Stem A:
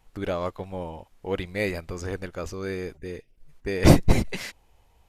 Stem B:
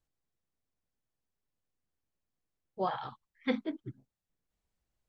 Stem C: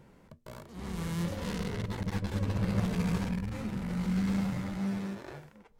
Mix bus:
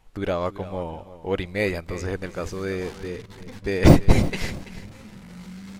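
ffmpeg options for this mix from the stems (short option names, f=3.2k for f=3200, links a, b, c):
-filter_complex "[0:a]deesser=0.55,volume=3dB,asplit=2[a][b];[b]volume=-15dB[c];[1:a]volume=-14.5dB[d];[2:a]alimiter=limit=-23.5dB:level=0:latency=1:release=180,highshelf=f=2.4k:g=11,dynaudnorm=f=470:g=5:m=6dB,adelay=1400,volume=-14.5dB[e];[c]aecho=0:1:334|668|1002|1336:1|0.25|0.0625|0.0156[f];[a][d][e][f]amix=inputs=4:normalize=0,highshelf=f=9.1k:g=-5.5"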